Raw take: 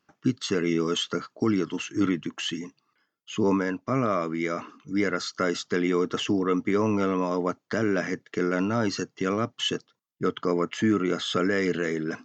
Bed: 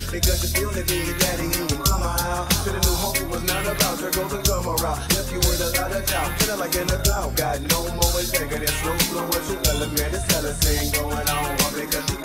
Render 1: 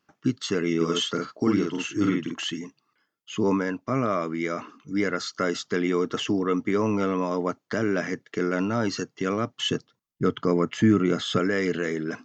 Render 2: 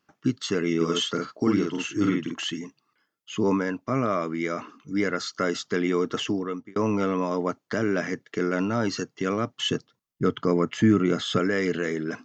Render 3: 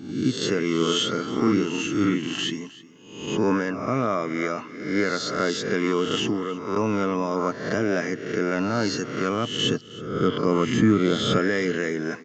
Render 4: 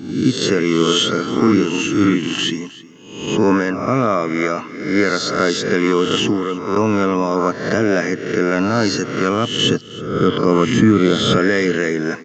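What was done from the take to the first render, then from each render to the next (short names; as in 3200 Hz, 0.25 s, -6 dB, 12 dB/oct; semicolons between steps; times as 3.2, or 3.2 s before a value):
0.76–2.44 doubler 48 ms -3 dB; 9.64–11.39 low shelf 180 Hz +11.5 dB
6.22–6.76 fade out
spectral swells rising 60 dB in 0.75 s; echo 0.315 s -19 dB
gain +7.5 dB; limiter -3 dBFS, peak gain reduction 2.5 dB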